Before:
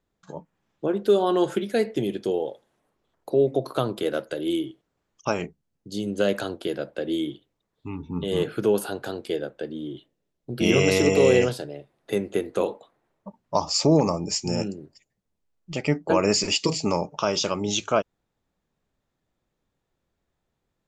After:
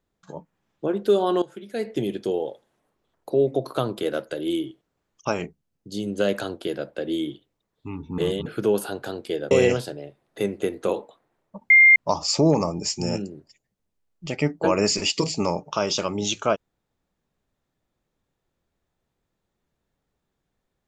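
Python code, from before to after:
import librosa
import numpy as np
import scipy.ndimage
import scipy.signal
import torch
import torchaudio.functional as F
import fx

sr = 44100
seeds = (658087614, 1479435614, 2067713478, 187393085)

y = fx.edit(x, sr, fx.fade_in_from(start_s=1.42, length_s=0.55, curve='qua', floor_db=-17.0),
    fx.reverse_span(start_s=8.18, length_s=0.28),
    fx.cut(start_s=9.51, length_s=1.72),
    fx.insert_tone(at_s=13.42, length_s=0.26, hz=2110.0, db=-9.0), tone=tone)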